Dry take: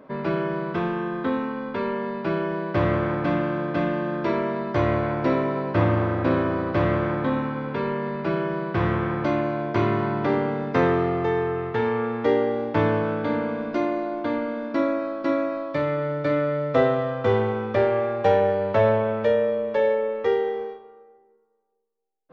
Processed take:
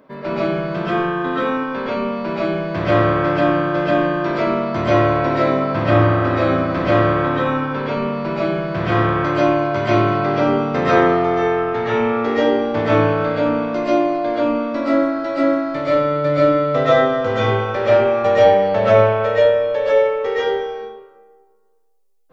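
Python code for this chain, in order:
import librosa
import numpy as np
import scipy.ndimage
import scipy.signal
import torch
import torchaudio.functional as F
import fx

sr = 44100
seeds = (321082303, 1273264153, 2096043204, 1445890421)

y = fx.high_shelf(x, sr, hz=3300.0, db=9.0)
y = fx.rev_freeverb(y, sr, rt60_s=0.48, hf_ratio=0.35, predelay_ms=90, drr_db=-9.0)
y = F.gain(torch.from_numpy(y), -3.0).numpy()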